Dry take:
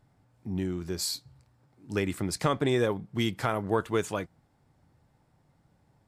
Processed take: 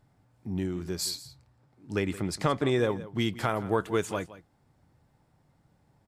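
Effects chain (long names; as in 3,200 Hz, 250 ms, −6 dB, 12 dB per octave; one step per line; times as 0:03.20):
0:01.10–0:03.36: high-shelf EQ 8,300 Hz −7 dB
single-tap delay 169 ms −16.5 dB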